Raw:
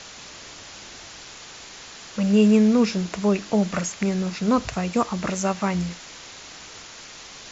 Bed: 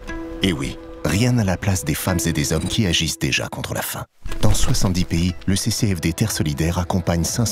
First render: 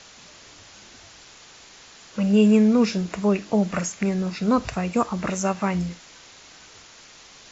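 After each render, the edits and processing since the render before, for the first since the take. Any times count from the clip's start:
noise reduction from a noise print 6 dB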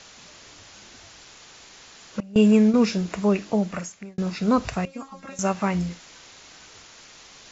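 0:02.20–0:02.74: noise gate with hold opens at −10 dBFS, closes at −12 dBFS
0:03.43–0:04.18: fade out
0:04.85–0:05.39: tuned comb filter 270 Hz, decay 0.16 s, mix 100%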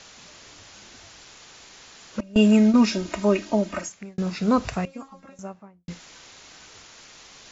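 0:02.19–0:03.89: comb filter 3.2 ms, depth 86%
0:04.64–0:05.88: fade out and dull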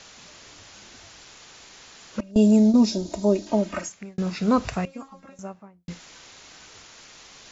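0:02.31–0:03.47: flat-topped bell 1,800 Hz −15 dB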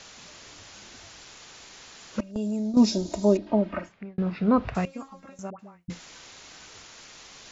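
0:02.21–0:02.77: downward compressor 2.5 to 1, threshold −32 dBFS
0:03.37–0:04.75: high-frequency loss of the air 400 metres
0:05.50–0:05.90: all-pass dispersion highs, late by 92 ms, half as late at 920 Hz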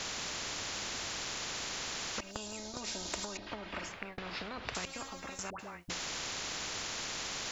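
downward compressor 6 to 1, threshold −29 dBFS, peak gain reduction 15 dB
every bin compressed towards the loudest bin 4 to 1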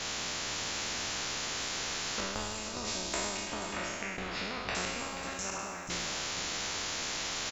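peak hold with a decay on every bin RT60 1.57 s
on a send: single-tap delay 482 ms −9.5 dB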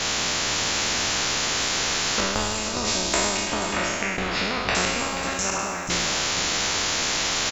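level +11.5 dB

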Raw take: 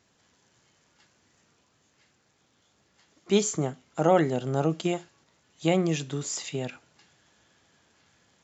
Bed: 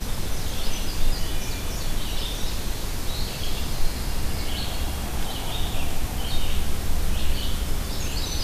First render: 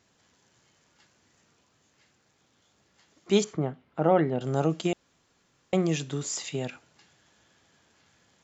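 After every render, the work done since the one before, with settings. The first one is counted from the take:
0:03.44–0:04.41: high-frequency loss of the air 360 metres
0:04.93–0:05.73: fill with room tone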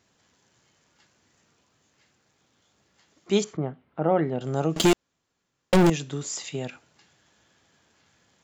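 0:03.57–0:04.22: high-frequency loss of the air 200 metres
0:04.76–0:05.90: leveller curve on the samples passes 5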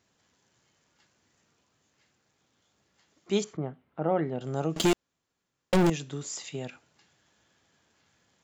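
level −4.5 dB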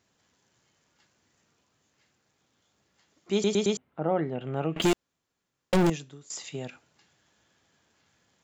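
0:03.33: stutter in place 0.11 s, 4 plays
0:04.35–0:04.82: high shelf with overshoot 3,800 Hz −13.5 dB, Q 3
0:05.90–0:06.30: fade out quadratic, to −15.5 dB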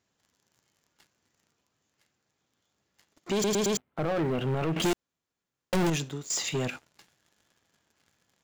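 brickwall limiter −23 dBFS, peak gain reduction 8.5 dB
leveller curve on the samples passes 3

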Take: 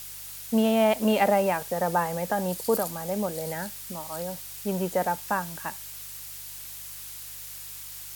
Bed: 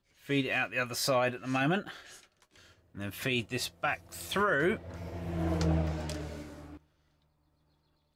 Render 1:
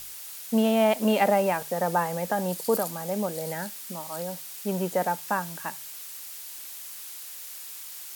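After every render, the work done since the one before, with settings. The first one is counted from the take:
hum removal 50 Hz, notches 3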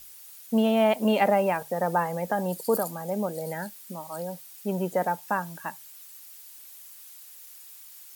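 broadband denoise 10 dB, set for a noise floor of −41 dBFS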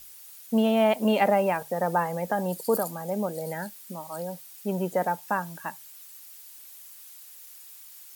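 no processing that can be heard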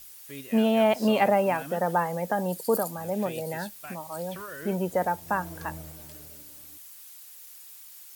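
mix in bed −12.5 dB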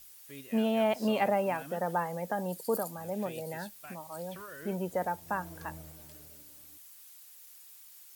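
level −6 dB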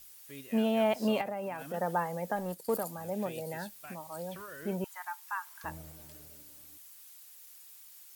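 0:01.21–0:01.74: downward compressor 4 to 1, threshold −34 dBFS
0:02.36–0:02.84: mu-law and A-law mismatch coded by A
0:04.84–0:05.64: Butterworth high-pass 940 Hz 48 dB per octave

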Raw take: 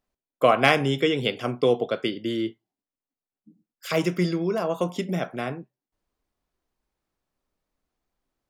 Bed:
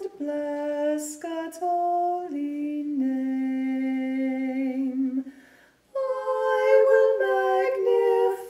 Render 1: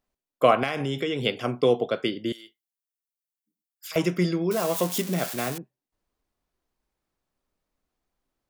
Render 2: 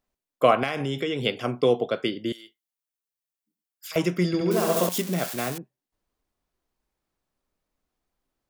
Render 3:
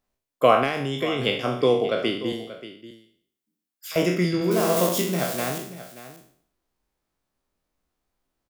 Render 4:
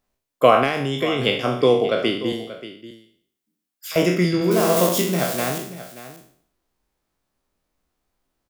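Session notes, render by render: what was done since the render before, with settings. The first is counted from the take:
0:00.63–0:01.22: downward compressor, threshold −23 dBFS; 0:02.32–0:03.96: first difference; 0:04.51–0:05.58: spike at every zero crossing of −21 dBFS
0:04.27–0:04.89: flutter between parallel walls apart 11.8 metres, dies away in 1.3 s
peak hold with a decay on every bin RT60 0.57 s; single-tap delay 583 ms −15 dB
level +3.5 dB; brickwall limiter −2 dBFS, peak gain reduction 2 dB

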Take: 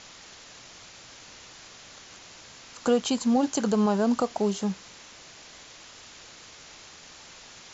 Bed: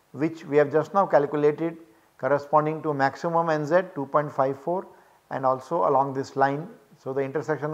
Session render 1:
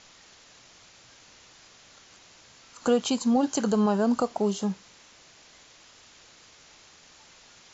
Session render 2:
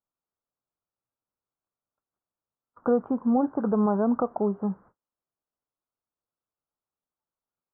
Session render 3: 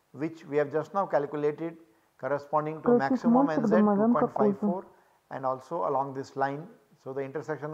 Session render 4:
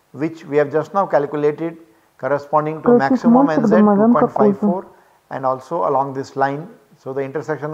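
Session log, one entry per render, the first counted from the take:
noise reduction from a noise print 6 dB
noise gate −48 dBFS, range −37 dB; Butterworth low-pass 1,400 Hz 48 dB per octave
mix in bed −7 dB
level +11 dB; brickwall limiter −2 dBFS, peak gain reduction 1.5 dB

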